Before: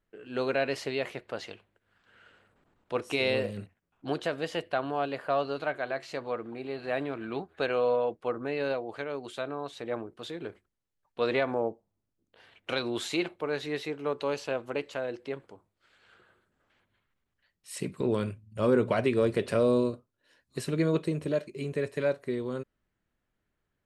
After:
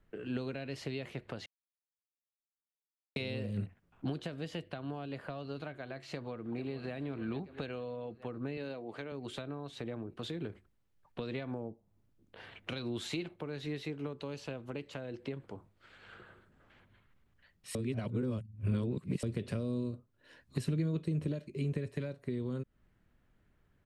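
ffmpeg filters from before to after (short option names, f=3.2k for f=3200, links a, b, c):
-filter_complex "[0:a]asplit=2[a][b];[b]afade=t=in:st=6.12:d=0.01,afade=t=out:st=6.95:d=0.01,aecho=0:1:440|880|1320|1760|2200|2640|3080|3520:0.149624|0.104736|0.0733155|0.0513209|0.0359246|0.0251472|0.0176031|0.0123221[c];[a][c]amix=inputs=2:normalize=0,asettb=1/sr,asplit=3[d][e][f];[d]atrim=end=8.574[g];[e]atrim=start=8.57:end=9.12,asetpts=PTS-STARTPTS,afade=t=in:d=0.004:c=qsin,afade=t=out:st=0.546:d=0.004:c=qsin,highpass=170[h];[f]atrim=start=9.116[i];[g][h]acrossfade=d=0.004:c1=hsin:c2=qsin[j];[j][i]acrossfade=d=0.004:c1=qsin:c2=hsin,asplit=5[k][l][m][n][o];[k]atrim=end=1.46,asetpts=PTS-STARTPTS,afade=t=out:st=1.456:d=0.004:c=hsin[p];[l]atrim=start=1.46:end=3.16,asetpts=PTS-STARTPTS,volume=0[q];[m]atrim=start=3.16:end=17.752,asetpts=PTS-STARTPTS,afade=t=in:d=0.004:c=hsin[r];[n]atrim=start=17.748:end=19.232,asetpts=PTS-STARTPTS,areverse[s];[o]atrim=start=19.228[t];[p][q][r]concat=n=3:v=0:a=1[u];[u][s]acrossfade=d=0.004:c1=hsin:c2=hsin[v];[v][t]acrossfade=d=0.004:c1=hsin:c2=hsin,acompressor=threshold=-43dB:ratio=2.5,bass=f=250:g=6,treble=f=4k:g=-7,acrossover=split=290|3000[w][x][y];[x]acompressor=threshold=-50dB:ratio=6[z];[w][z][y]amix=inputs=3:normalize=0,volume=6.5dB"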